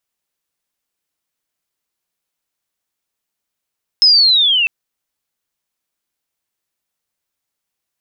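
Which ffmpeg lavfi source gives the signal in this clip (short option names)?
-f lavfi -i "aevalsrc='pow(10,(-5.5-6*t/0.65)/20)*sin(2*PI*(5200*t-2600*t*t/(2*0.65)))':d=0.65:s=44100"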